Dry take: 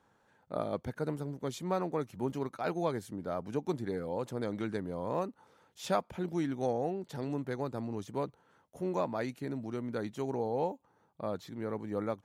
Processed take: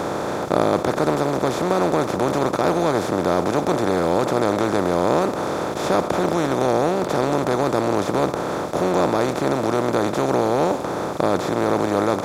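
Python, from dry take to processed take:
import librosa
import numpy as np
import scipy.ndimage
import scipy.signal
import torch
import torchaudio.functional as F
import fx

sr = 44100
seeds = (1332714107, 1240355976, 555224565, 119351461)

y = fx.bin_compress(x, sr, power=0.2)
y = F.gain(torch.from_numpy(y), 5.5).numpy()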